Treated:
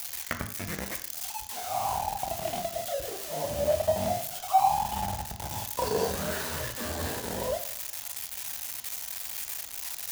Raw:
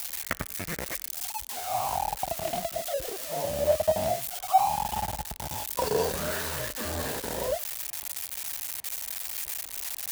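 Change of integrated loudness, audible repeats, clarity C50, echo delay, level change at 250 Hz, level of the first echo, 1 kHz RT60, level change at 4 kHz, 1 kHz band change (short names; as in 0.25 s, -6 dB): -1.0 dB, none, 10.5 dB, none, +1.0 dB, none, 0.55 s, -1.0 dB, 0.0 dB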